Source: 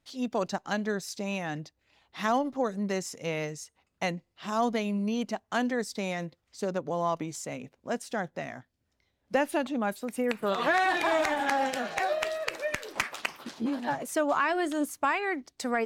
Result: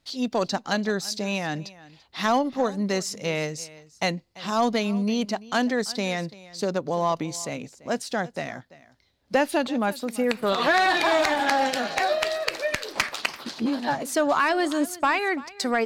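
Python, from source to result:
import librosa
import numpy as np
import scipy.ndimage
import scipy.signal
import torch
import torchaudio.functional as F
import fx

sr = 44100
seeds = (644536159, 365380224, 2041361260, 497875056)

p1 = fx.peak_eq(x, sr, hz=4400.0, db=8.0, octaves=0.63)
p2 = np.clip(p1, -10.0 ** (-21.5 / 20.0), 10.0 ** (-21.5 / 20.0))
p3 = p1 + F.gain(torch.from_numpy(p2), -6.5).numpy()
p4 = p3 + 10.0 ** (-19.5 / 20.0) * np.pad(p3, (int(339 * sr / 1000.0), 0))[:len(p3)]
y = F.gain(torch.from_numpy(p4), 1.5).numpy()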